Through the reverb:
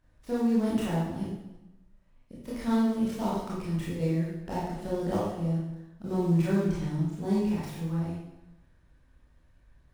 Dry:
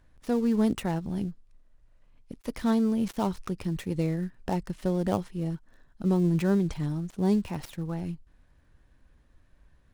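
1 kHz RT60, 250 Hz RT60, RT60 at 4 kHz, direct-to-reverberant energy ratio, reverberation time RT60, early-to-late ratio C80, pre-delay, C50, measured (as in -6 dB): 0.95 s, 1.0 s, 0.85 s, -8.0 dB, 0.95 s, 3.0 dB, 21 ms, -1.0 dB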